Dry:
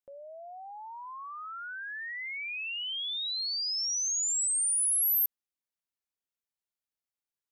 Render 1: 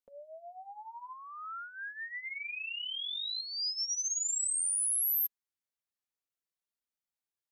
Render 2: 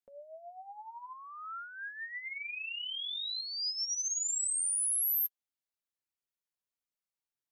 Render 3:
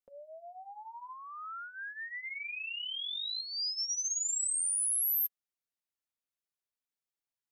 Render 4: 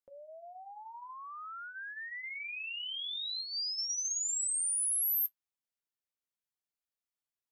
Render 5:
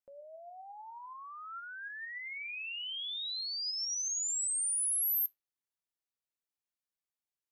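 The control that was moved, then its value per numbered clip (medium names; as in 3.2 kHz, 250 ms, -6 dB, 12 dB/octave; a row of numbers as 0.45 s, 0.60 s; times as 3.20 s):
flange, regen: +6%, +27%, -15%, -59%, +82%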